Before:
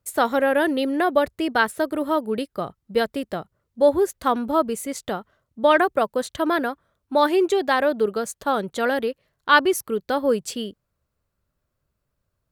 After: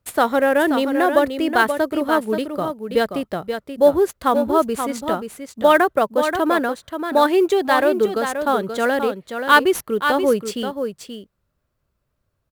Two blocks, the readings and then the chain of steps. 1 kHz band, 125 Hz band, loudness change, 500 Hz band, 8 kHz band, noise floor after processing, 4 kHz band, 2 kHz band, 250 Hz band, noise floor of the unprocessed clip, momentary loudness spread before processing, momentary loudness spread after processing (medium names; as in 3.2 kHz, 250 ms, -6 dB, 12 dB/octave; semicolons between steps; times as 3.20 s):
+3.5 dB, no reading, +3.0 dB, +3.5 dB, +1.0 dB, -73 dBFS, +2.5 dB, +3.5 dB, +3.5 dB, -78 dBFS, 12 LU, 11 LU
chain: in parallel at -8 dB: sample-rate reducer 12 kHz, jitter 20%; on the sum: delay 530 ms -7.5 dB